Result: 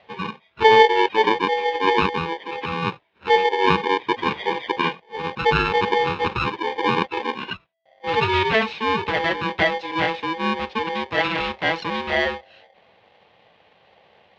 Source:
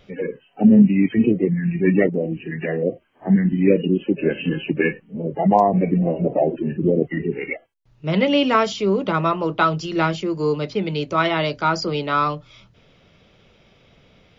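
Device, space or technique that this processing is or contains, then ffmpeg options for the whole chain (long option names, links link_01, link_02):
ring modulator pedal into a guitar cabinet: -af "aeval=exprs='val(0)*sgn(sin(2*PI*660*n/s))':channel_layout=same,highpass=100,equalizer=frequency=140:width_type=q:width=4:gain=-4,equalizer=frequency=270:width_type=q:width=4:gain=-9,equalizer=frequency=1300:width_type=q:width=4:gain=-9,lowpass=frequency=3500:width=0.5412,lowpass=frequency=3500:width=1.3066"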